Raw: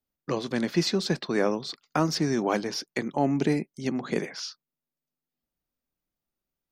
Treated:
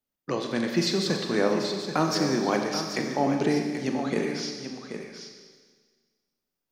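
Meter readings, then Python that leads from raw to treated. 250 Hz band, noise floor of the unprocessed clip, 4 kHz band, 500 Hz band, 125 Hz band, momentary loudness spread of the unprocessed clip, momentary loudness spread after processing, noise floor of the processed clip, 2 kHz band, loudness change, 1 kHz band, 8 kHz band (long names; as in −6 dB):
+1.0 dB, below −85 dBFS, +2.0 dB, +2.0 dB, −1.0 dB, 8 LU, 13 LU, −85 dBFS, +2.0 dB, +1.0 dB, +2.0 dB, +2.0 dB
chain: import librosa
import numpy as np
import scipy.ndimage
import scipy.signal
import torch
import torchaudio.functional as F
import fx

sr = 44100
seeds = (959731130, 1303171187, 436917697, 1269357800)

y = fx.low_shelf(x, sr, hz=120.0, db=-6.5)
y = y + 10.0 ** (-9.0 / 20.0) * np.pad(y, (int(782 * sr / 1000.0), 0))[:len(y)]
y = fx.rev_schroeder(y, sr, rt60_s=1.6, comb_ms=30, drr_db=3.5)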